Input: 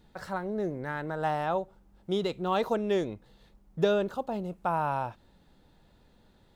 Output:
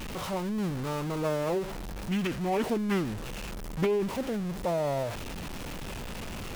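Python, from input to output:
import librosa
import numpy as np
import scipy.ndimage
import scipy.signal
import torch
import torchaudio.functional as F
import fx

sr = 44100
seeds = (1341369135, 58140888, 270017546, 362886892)

y = x + 0.5 * 10.0 ** (-29.0 / 20.0) * np.sign(x)
y = fx.formant_shift(y, sr, semitones=-6)
y = fx.doppler_dist(y, sr, depth_ms=0.34)
y = y * 10.0 ** (-2.5 / 20.0)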